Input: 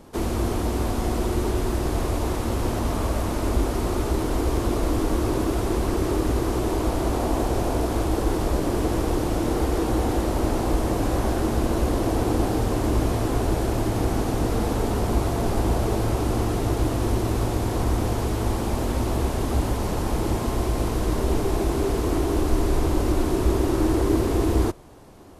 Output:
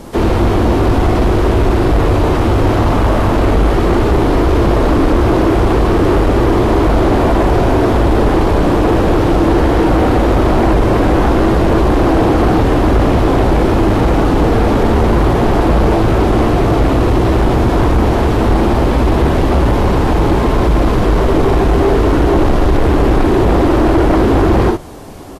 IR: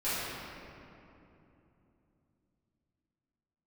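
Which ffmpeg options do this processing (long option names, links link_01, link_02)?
-filter_complex "[0:a]asplit=2[link_01][link_02];[link_02]aecho=0:1:40|58:0.398|0.376[link_03];[link_01][link_03]amix=inputs=2:normalize=0,acrossover=split=3700[link_04][link_05];[link_05]acompressor=threshold=-57dB:ratio=4:attack=1:release=60[link_06];[link_04][link_06]amix=inputs=2:normalize=0,aeval=exprs='0.376*sin(PI/2*2.82*val(0)/0.376)':channel_layout=same,volume=2dB" -ar 48000 -c:a libvorbis -b:a 48k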